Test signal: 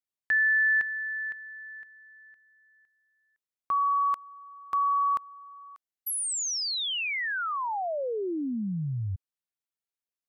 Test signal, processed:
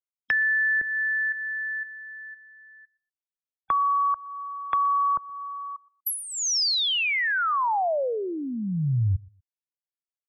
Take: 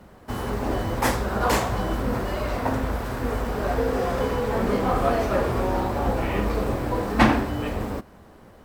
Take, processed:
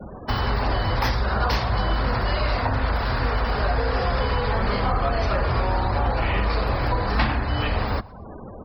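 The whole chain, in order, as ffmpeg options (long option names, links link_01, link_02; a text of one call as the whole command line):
ffmpeg -i in.wav -filter_complex "[0:a]highshelf=frequency=6500:width_type=q:width=3:gain=-11,aexciter=amount=4.4:drive=8:freq=12000,acrossover=split=130|650[link_01][link_02][link_03];[link_01]acompressor=threshold=-33dB:ratio=4[link_04];[link_02]acompressor=threshold=-49dB:ratio=4[link_05];[link_03]acompressor=threshold=-37dB:ratio=4[link_06];[link_04][link_05][link_06]amix=inputs=3:normalize=0,asplit=2[link_07][link_08];[link_08]asoftclip=type=tanh:threshold=-28dB,volume=-3dB[link_09];[link_07][link_09]amix=inputs=2:normalize=0,afftfilt=real='re*gte(hypot(re,im),0.00891)':imag='im*gte(hypot(re,im),0.00891)':win_size=1024:overlap=0.75,asplit=2[link_10][link_11];[link_11]aecho=0:1:121|242:0.0631|0.0145[link_12];[link_10][link_12]amix=inputs=2:normalize=0,volume=7.5dB" out.wav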